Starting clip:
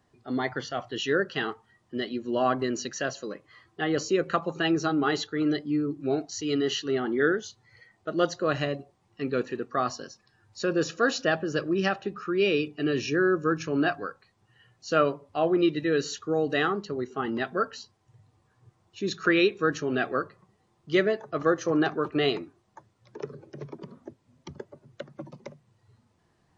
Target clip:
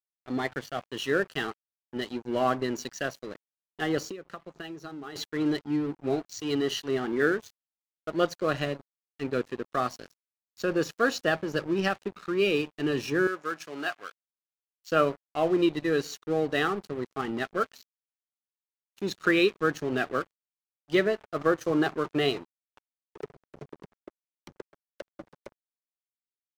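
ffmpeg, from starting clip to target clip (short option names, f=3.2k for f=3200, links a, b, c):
-filter_complex "[0:a]aeval=exprs='sgn(val(0))*max(abs(val(0))-0.00944,0)':c=same,asettb=1/sr,asplit=3[a][b][c];[a]atrim=end=4.104[d];[b]atrim=start=4.1:end=5.16,asetpts=PTS-STARTPTS,afade=t=in:d=0.004:c=qsin,afade=t=out:st=1.056:d=0.004:c=qsin,acompressor=threshold=-37dB:ratio=12[e];[c]atrim=start=5.156[f];[d][e]acrossfade=d=0.004:c1=hsin:c2=qsin[g];[g][f]acrossfade=d=0.004:c1=qsin:c2=hsin,asettb=1/sr,asplit=3[h][i][j];[h]atrim=end=13.274[k];[i]atrim=start=13.27:end=14.92,asetpts=PTS-STARTPTS,afade=t=in:d=0.004:c=qsin,afade=t=out:st=1.646:d=0.004:c=qsin,highpass=f=1.2k:p=1[l];[j]atrim=start=14.916[m];[k][l]acrossfade=d=0.004:c1=hsin:c2=qsin[n];[n][m]acrossfade=d=0.004:c1=qsin:c2=hsin"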